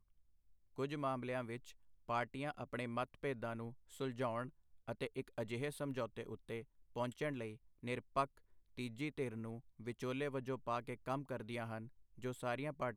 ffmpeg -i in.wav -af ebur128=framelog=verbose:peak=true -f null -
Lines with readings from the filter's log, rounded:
Integrated loudness:
  I:         -43.7 LUFS
  Threshold: -53.9 LUFS
Loudness range:
  LRA:         1.3 LU
  Threshold: -64.0 LUFS
  LRA low:   -44.7 LUFS
  LRA high:  -43.4 LUFS
True peak:
  Peak:      -23.1 dBFS